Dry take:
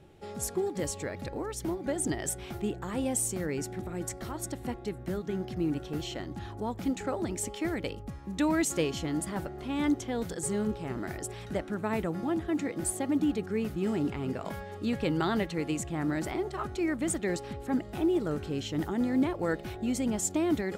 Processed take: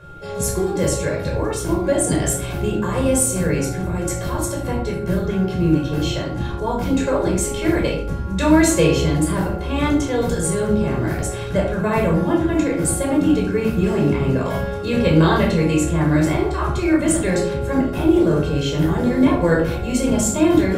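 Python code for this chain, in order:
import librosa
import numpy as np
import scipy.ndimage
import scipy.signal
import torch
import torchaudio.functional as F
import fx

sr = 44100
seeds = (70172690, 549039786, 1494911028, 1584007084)

y = x + 0.31 * np.pad(x, (int(1.9 * sr / 1000.0), 0))[:len(x)]
y = y + 10.0 ** (-51.0 / 20.0) * np.sin(2.0 * np.pi * 1400.0 * np.arange(len(y)) / sr)
y = fx.room_shoebox(y, sr, seeds[0], volume_m3=820.0, walls='furnished', distance_m=5.3)
y = F.gain(torch.from_numpy(y), 5.0).numpy()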